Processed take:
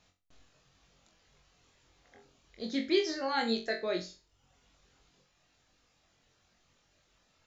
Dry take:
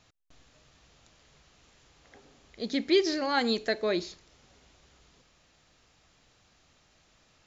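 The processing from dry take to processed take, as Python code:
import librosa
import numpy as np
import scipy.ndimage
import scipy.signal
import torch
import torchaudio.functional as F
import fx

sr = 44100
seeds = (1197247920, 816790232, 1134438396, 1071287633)

p1 = fx.dereverb_blind(x, sr, rt60_s=0.97)
p2 = p1 + fx.room_flutter(p1, sr, wall_m=3.8, rt60_s=0.31, dry=0)
y = p2 * 10.0 ** (-5.5 / 20.0)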